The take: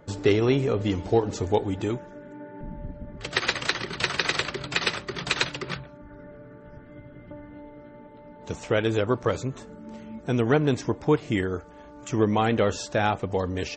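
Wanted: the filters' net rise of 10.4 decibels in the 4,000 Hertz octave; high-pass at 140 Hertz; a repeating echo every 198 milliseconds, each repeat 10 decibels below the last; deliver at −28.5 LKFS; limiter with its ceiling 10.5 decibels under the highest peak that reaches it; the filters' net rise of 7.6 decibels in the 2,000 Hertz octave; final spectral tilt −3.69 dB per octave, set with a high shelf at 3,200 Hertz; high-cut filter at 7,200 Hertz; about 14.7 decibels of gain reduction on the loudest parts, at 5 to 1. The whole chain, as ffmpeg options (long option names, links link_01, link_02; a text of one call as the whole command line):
ffmpeg -i in.wav -af "highpass=140,lowpass=7200,equalizer=frequency=2000:width_type=o:gain=5.5,highshelf=frequency=3200:gain=6,equalizer=frequency=4000:width_type=o:gain=7,acompressor=threshold=-30dB:ratio=5,alimiter=limit=-23dB:level=0:latency=1,aecho=1:1:198|396|594|792:0.316|0.101|0.0324|0.0104,volume=8dB" out.wav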